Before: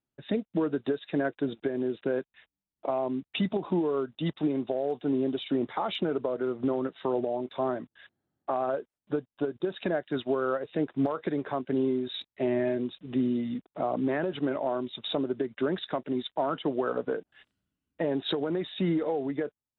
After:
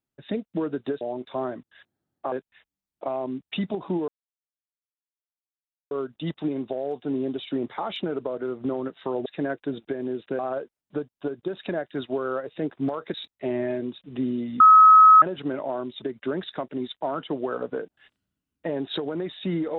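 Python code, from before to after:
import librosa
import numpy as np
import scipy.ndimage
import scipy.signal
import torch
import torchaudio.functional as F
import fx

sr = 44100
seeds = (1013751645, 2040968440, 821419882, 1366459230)

y = fx.edit(x, sr, fx.swap(start_s=1.01, length_s=1.13, other_s=7.25, other_length_s=1.31),
    fx.insert_silence(at_s=3.9, length_s=1.83),
    fx.cut(start_s=11.31, length_s=0.8),
    fx.bleep(start_s=13.57, length_s=0.62, hz=1280.0, db=-8.5),
    fx.cut(start_s=14.99, length_s=0.38), tone=tone)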